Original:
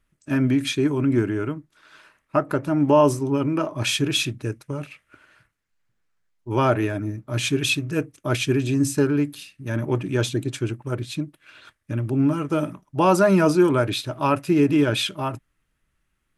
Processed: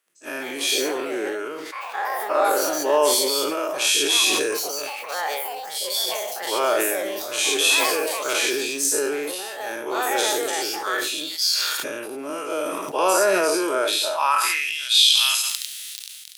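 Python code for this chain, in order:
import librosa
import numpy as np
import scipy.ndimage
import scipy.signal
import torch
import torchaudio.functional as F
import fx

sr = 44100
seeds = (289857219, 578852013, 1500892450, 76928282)

p1 = fx.spec_dilate(x, sr, span_ms=120)
p2 = fx.tilt_eq(p1, sr, slope=3.5)
p3 = fx.dmg_crackle(p2, sr, seeds[0], per_s=15.0, level_db=-34.0)
p4 = fx.filter_sweep_highpass(p3, sr, from_hz=450.0, to_hz=3800.0, start_s=13.99, end_s=14.84, q=2.5)
p5 = fx.echo_pitch(p4, sr, ms=218, semitones=5, count=2, db_per_echo=-6.0)
p6 = p5 + fx.echo_feedback(p5, sr, ms=71, feedback_pct=35, wet_db=-15.0, dry=0)
p7 = fx.sustainer(p6, sr, db_per_s=23.0)
y = p7 * 10.0 ** (-8.0 / 20.0)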